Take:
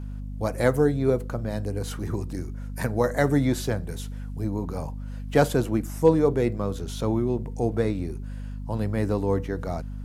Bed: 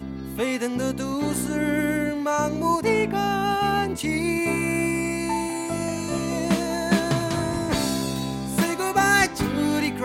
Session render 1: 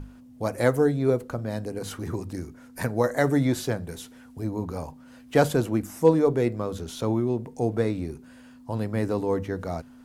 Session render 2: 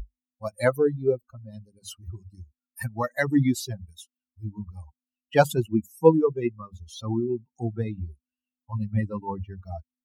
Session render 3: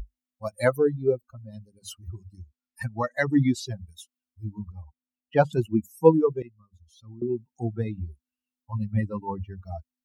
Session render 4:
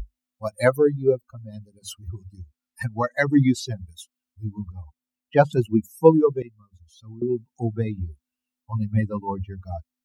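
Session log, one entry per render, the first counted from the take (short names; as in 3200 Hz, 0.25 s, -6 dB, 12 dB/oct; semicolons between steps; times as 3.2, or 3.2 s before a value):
notches 50/100/150/200 Hz
per-bin expansion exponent 3; in parallel at +1 dB: vocal rider within 4 dB 0.5 s
2.37–3.67 LPF 6500 Hz; 4.72–5.53 tape spacing loss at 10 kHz 28 dB; 6.42–7.22 passive tone stack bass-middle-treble 6-0-2
gain +3.5 dB; limiter -1 dBFS, peak gain reduction 1.5 dB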